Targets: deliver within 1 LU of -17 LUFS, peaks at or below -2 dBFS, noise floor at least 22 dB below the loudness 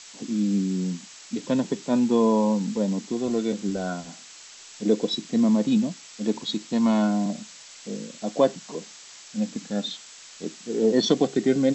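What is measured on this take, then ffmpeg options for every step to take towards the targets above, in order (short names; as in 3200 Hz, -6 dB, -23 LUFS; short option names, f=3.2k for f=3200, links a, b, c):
noise floor -46 dBFS; noise floor target -47 dBFS; loudness -25.0 LUFS; peak -7.5 dBFS; loudness target -17.0 LUFS
-> -af "afftdn=nr=6:nf=-46"
-af "volume=8dB,alimiter=limit=-2dB:level=0:latency=1"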